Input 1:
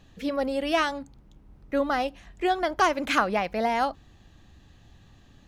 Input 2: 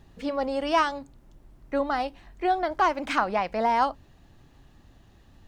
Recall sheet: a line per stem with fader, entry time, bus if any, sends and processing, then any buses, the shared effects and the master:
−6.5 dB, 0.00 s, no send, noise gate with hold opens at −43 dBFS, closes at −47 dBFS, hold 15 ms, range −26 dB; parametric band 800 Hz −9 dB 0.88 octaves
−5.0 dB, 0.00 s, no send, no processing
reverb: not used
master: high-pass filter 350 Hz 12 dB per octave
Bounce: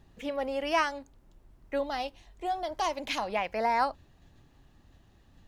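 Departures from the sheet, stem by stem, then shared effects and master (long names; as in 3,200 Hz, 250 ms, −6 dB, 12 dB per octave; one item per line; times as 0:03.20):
stem 2: polarity flipped
master: missing high-pass filter 350 Hz 12 dB per octave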